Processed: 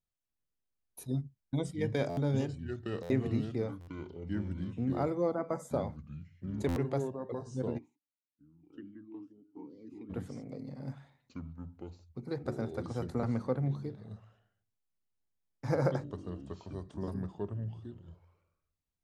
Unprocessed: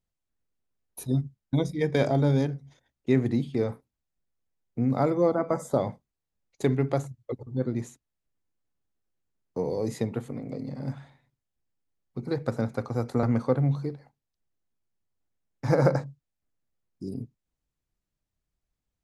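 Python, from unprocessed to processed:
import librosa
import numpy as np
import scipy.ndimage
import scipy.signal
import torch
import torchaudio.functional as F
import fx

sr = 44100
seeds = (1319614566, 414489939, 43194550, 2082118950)

y = fx.echo_pitch(x, sr, ms=407, semitones=-4, count=2, db_per_echo=-6.0)
y = fx.buffer_glitch(y, sr, at_s=(2.09, 3.02, 3.8, 6.68, 14.79), block=512, repeats=6)
y = fx.vowel_sweep(y, sr, vowels='i-u', hz=fx.line((7.77, 1.2), (10.09, 2.9)), at=(7.77, 10.09), fade=0.02)
y = F.gain(torch.from_numpy(y), -8.0).numpy()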